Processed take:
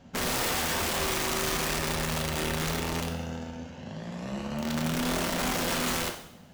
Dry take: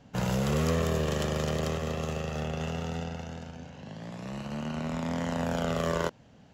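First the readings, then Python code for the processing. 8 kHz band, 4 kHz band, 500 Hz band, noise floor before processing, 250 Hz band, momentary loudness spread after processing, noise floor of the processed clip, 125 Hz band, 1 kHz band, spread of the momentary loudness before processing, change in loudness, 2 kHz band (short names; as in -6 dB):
+11.0 dB, +8.5 dB, -2.0 dB, -56 dBFS, 0.0 dB, 11 LU, -50 dBFS, -4.0 dB, +3.5 dB, 14 LU, +2.0 dB, +7.0 dB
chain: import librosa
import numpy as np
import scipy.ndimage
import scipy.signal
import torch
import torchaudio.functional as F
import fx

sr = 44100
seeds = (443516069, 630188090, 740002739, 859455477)

y = (np.mod(10.0 ** (27.0 / 20.0) * x + 1.0, 2.0) - 1.0) / 10.0 ** (27.0 / 20.0)
y = fx.rev_double_slope(y, sr, seeds[0], early_s=0.7, late_s=2.1, knee_db=-25, drr_db=3.5)
y = y * librosa.db_to_amplitude(1.5)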